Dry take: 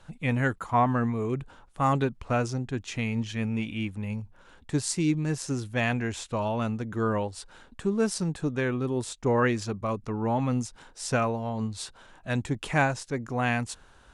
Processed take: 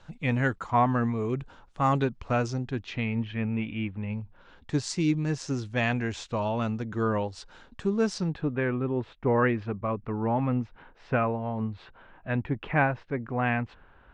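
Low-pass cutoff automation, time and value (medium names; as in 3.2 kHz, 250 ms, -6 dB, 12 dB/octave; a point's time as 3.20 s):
low-pass 24 dB/octave
2.55 s 6.6 kHz
3.22 s 2.9 kHz
3.97 s 2.9 kHz
4.76 s 6.4 kHz
8.11 s 6.4 kHz
8.53 s 2.6 kHz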